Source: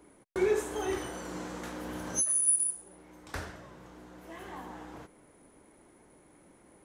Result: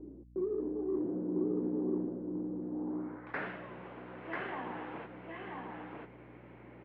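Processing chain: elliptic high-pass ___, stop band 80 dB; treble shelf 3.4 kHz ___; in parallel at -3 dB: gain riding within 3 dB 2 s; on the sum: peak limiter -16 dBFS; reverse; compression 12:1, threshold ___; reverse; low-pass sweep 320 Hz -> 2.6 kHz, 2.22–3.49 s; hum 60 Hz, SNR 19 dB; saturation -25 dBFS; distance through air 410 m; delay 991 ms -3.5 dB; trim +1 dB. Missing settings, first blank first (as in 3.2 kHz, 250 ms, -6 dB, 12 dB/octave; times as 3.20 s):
160 Hz, +4.5 dB, -33 dBFS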